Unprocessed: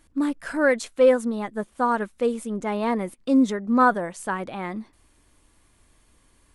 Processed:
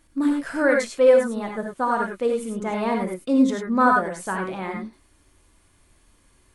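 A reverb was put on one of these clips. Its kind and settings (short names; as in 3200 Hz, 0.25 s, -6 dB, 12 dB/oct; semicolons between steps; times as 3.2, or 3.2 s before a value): non-linear reverb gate 0.12 s rising, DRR 1.5 dB; gain -1 dB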